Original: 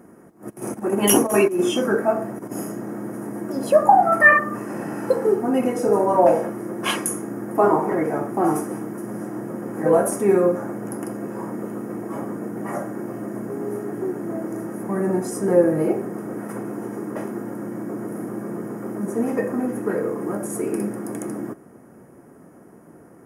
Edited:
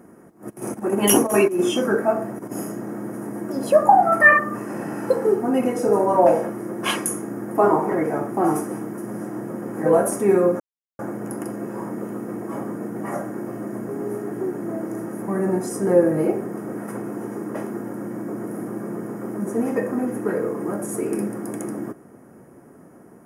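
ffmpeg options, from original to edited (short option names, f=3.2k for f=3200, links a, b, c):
-filter_complex "[0:a]asplit=2[a][b];[a]atrim=end=10.6,asetpts=PTS-STARTPTS,afade=t=out:st=10.596:d=0.004:c=hsin,apad=pad_dur=0.39[c];[b]atrim=start=10.6,asetpts=PTS-STARTPTS,afade=t=in:d=0.004:c=hsin[d];[c][d]concat=n=2:v=0:a=1"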